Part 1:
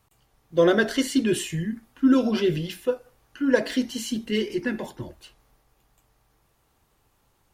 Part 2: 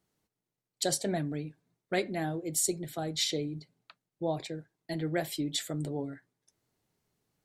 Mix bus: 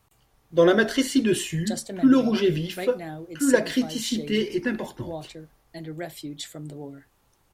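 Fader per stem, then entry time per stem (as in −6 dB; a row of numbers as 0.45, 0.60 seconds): +1.0, −3.0 decibels; 0.00, 0.85 seconds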